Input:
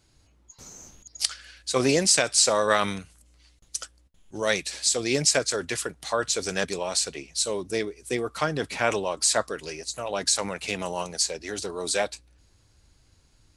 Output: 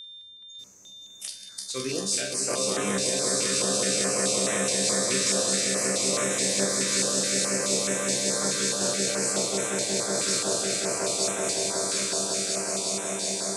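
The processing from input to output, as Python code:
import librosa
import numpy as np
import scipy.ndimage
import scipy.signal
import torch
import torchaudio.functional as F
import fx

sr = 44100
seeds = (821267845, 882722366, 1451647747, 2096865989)

p1 = fx.reverse_delay_fb(x, sr, ms=473, feedback_pct=75, wet_db=-5.5)
p2 = scipy.signal.sosfilt(scipy.signal.butter(2, 150.0, 'highpass', fs=sr, output='sos'), p1)
p3 = fx.high_shelf(p2, sr, hz=2700.0, db=8.5)
p4 = fx.level_steps(p3, sr, step_db=23)
p5 = p3 + F.gain(torch.from_numpy(p4), 3.0).numpy()
p6 = fx.resonator_bank(p5, sr, root=36, chord='fifth', decay_s=0.36)
p7 = p6 + 10.0 ** (-33.0 / 20.0) * np.sin(2.0 * np.pi * 3600.0 * np.arange(len(p6)) / sr)
p8 = fx.low_shelf(p7, sr, hz=330.0, db=7.0)
p9 = fx.doubler(p8, sr, ms=44.0, db=-9.0)
p10 = p9 + fx.echo_swell(p9, sr, ms=184, loudest=8, wet_db=-5.0, dry=0)
p11 = fx.filter_held_notch(p10, sr, hz=4.7, low_hz=770.0, high_hz=4600.0)
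y = F.gain(torch.from_numpy(p11), -6.5).numpy()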